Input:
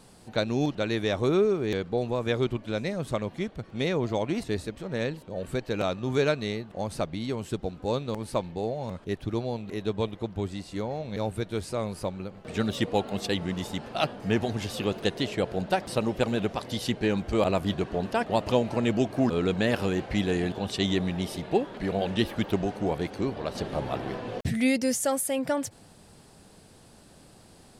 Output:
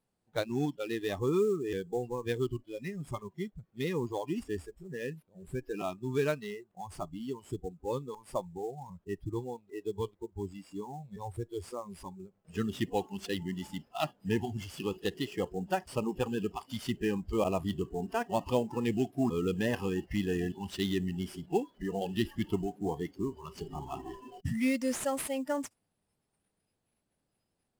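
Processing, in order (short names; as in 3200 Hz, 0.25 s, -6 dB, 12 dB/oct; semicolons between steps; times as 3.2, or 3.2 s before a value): spectral noise reduction 24 dB; in parallel at -5 dB: sample-rate reducer 7700 Hz, jitter 20%; on the sum: gain -8.5 dB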